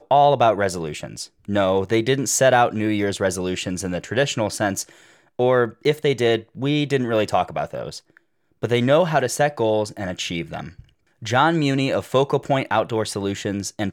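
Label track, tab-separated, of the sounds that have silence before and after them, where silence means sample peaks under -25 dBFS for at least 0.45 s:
5.390000	7.970000	sound
8.630000	10.690000	sound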